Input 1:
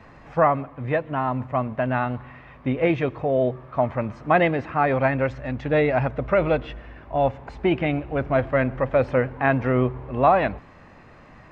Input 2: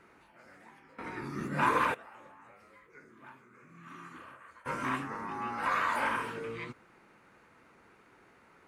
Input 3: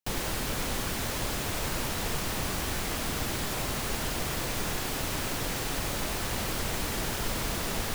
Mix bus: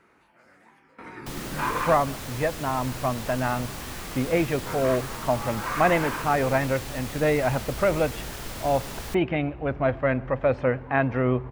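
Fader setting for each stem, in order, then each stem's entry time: -2.5 dB, -0.5 dB, -5.0 dB; 1.50 s, 0.00 s, 1.20 s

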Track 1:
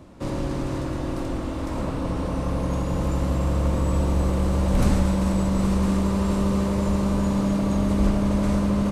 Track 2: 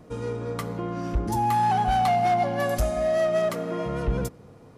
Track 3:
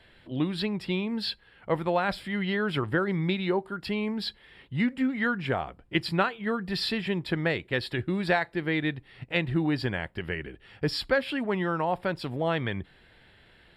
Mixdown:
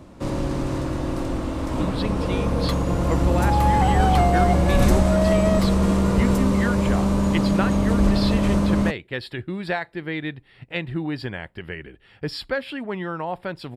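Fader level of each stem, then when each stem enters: +2.0 dB, +0.5 dB, -1.0 dB; 0.00 s, 2.10 s, 1.40 s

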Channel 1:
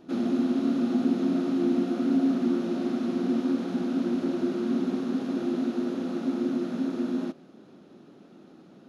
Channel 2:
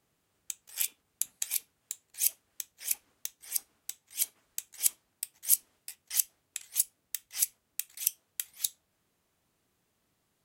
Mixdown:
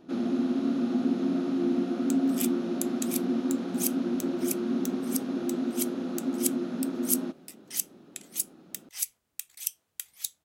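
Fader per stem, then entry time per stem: -2.0 dB, -2.5 dB; 0.00 s, 1.60 s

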